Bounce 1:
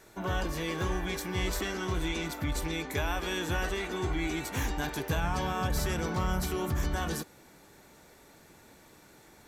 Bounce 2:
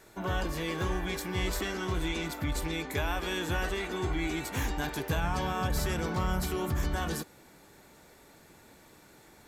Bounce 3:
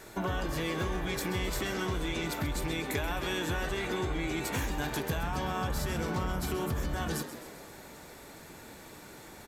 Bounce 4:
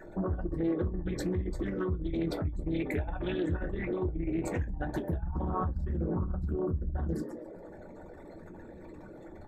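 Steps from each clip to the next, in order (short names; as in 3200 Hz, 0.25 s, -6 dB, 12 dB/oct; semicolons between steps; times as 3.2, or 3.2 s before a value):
notch 5900 Hz, Q 20
compressor, threshold -37 dBFS, peak gain reduction 11 dB; frequency-shifting echo 0.131 s, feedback 59%, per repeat +83 Hz, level -12 dB; gain +7 dB
formant sharpening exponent 3; reverb, pre-delay 3 ms, DRR 4 dB; Doppler distortion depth 0.3 ms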